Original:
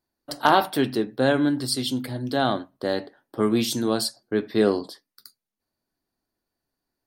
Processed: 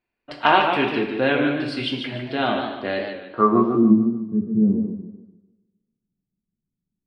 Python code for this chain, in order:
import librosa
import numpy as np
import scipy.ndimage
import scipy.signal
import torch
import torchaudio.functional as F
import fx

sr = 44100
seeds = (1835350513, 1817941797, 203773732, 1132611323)

y = fx.filter_sweep_lowpass(x, sr, from_hz=2500.0, to_hz=180.0, start_s=3.21, end_s=3.96, q=6.3)
y = fx.rev_double_slope(y, sr, seeds[0], early_s=0.65, late_s=1.8, knee_db=-24, drr_db=3.0)
y = fx.echo_warbled(y, sr, ms=148, feedback_pct=37, rate_hz=2.8, cents=116, wet_db=-6.5)
y = y * librosa.db_to_amplitude(-2.0)